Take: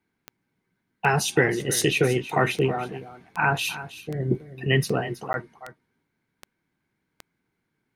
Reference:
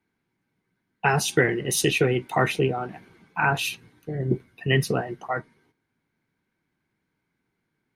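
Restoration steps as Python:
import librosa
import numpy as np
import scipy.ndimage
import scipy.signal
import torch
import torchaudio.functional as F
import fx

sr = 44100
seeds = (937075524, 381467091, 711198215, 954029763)

y = fx.fix_declick_ar(x, sr, threshold=10.0)
y = fx.fix_interpolate(y, sr, at_s=(5.33,), length_ms=11.0)
y = fx.fix_echo_inverse(y, sr, delay_ms=321, level_db=-14.5)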